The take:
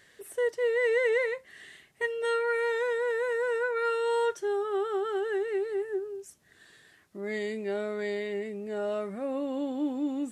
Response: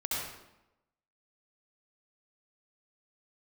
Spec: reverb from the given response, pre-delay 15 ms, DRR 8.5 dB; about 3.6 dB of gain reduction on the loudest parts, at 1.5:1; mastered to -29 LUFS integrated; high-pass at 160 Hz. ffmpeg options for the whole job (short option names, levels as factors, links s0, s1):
-filter_complex "[0:a]highpass=160,acompressor=threshold=0.0224:ratio=1.5,asplit=2[s0][s1];[1:a]atrim=start_sample=2205,adelay=15[s2];[s1][s2]afir=irnorm=-1:irlink=0,volume=0.2[s3];[s0][s3]amix=inputs=2:normalize=0,volume=1.41"